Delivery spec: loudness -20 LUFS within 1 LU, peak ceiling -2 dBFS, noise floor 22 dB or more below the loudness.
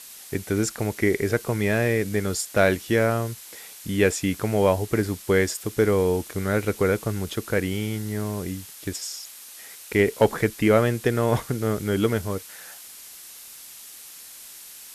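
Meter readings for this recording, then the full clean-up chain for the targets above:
noise floor -43 dBFS; noise floor target -46 dBFS; loudness -24.0 LUFS; peak level -5.0 dBFS; loudness target -20.0 LUFS
-> noise reduction 6 dB, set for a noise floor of -43 dBFS; trim +4 dB; peak limiter -2 dBFS

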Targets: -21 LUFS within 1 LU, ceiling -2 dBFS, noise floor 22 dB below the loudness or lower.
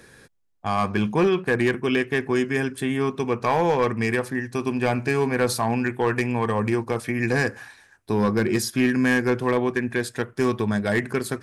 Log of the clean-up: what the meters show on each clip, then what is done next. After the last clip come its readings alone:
clipped samples 0.7%; clipping level -13.5 dBFS; loudness -23.5 LUFS; peak level -13.5 dBFS; loudness target -21.0 LUFS
-> clip repair -13.5 dBFS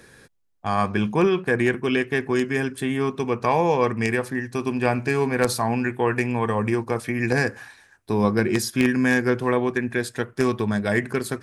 clipped samples 0.0%; loudness -23.0 LUFS; peak level -4.5 dBFS; loudness target -21.0 LUFS
-> trim +2 dB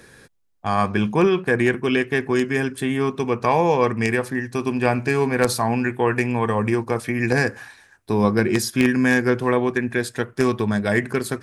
loudness -21.0 LUFS; peak level -2.5 dBFS; noise floor -54 dBFS

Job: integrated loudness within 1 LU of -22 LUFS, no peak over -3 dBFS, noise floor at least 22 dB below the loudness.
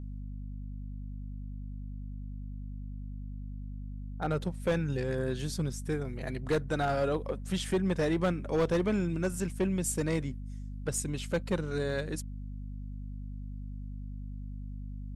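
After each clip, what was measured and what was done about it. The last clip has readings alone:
clipped samples 0.8%; clipping level -22.5 dBFS; hum 50 Hz; highest harmonic 250 Hz; hum level -37 dBFS; loudness -34.5 LUFS; peak level -22.5 dBFS; loudness target -22.0 LUFS
-> clip repair -22.5 dBFS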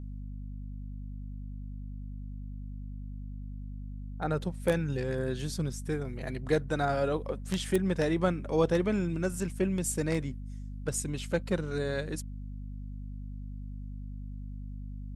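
clipped samples 0.0%; hum 50 Hz; highest harmonic 250 Hz; hum level -37 dBFS
-> de-hum 50 Hz, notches 5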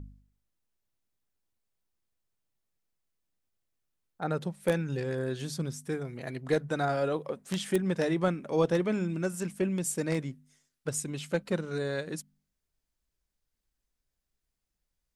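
hum not found; loudness -31.5 LUFS; peak level -13.0 dBFS; loudness target -22.0 LUFS
-> trim +9.5 dB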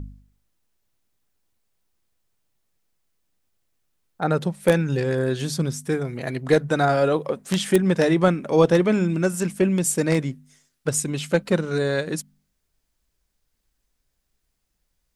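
loudness -22.0 LUFS; peak level -3.5 dBFS; noise floor -75 dBFS

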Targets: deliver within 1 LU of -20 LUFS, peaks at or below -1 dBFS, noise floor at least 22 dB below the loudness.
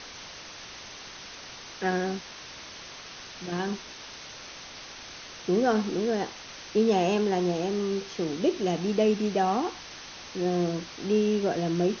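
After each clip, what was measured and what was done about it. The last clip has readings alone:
noise floor -44 dBFS; noise floor target -50 dBFS; loudness -27.5 LUFS; peak level -11.5 dBFS; loudness target -20.0 LUFS
-> noise reduction 6 dB, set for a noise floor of -44 dBFS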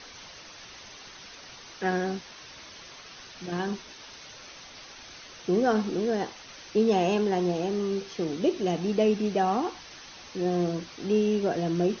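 noise floor -47 dBFS; noise floor target -50 dBFS
-> noise reduction 6 dB, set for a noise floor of -47 dBFS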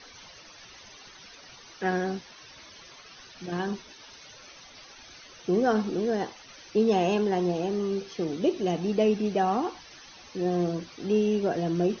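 noise floor -50 dBFS; loudness -27.5 LUFS; peak level -12.0 dBFS; loudness target -20.0 LUFS
-> trim +7.5 dB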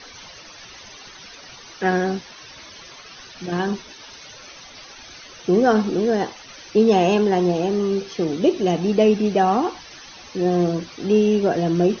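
loudness -20.0 LUFS; peak level -4.5 dBFS; noise floor -43 dBFS

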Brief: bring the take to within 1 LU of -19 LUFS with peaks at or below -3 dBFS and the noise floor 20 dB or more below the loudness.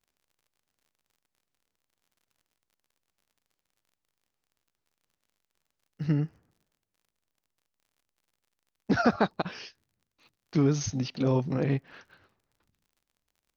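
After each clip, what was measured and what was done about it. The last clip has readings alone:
tick rate 37 per s; loudness -28.5 LUFS; peak level -11.0 dBFS; loudness target -19.0 LUFS
-> de-click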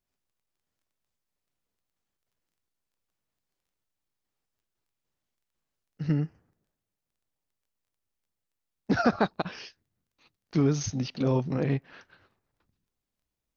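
tick rate 0 per s; loudness -28.5 LUFS; peak level -11.0 dBFS; loudness target -19.0 LUFS
-> trim +9.5 dB; peak limiter -3 dBFS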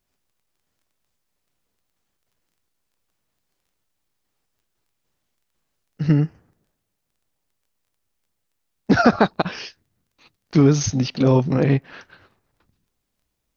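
loudness -19.5 LUFS; peak level -3.0 dBFS; noise floor -76 dBFS

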